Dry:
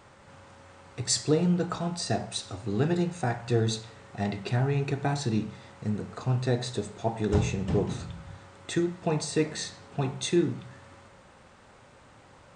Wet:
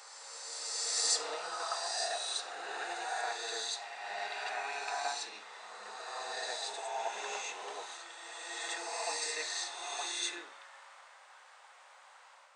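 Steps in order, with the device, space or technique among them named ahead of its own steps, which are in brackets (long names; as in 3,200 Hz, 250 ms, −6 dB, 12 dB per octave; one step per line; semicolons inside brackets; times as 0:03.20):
ghost voice (reversed playback; convolution reverb RT60 2.6 s, pre-delay 37 ms, DRR −3.5 dB; reversed playback; high-pass filter 730 Hz 24 dB per octave)
level −4.5 dB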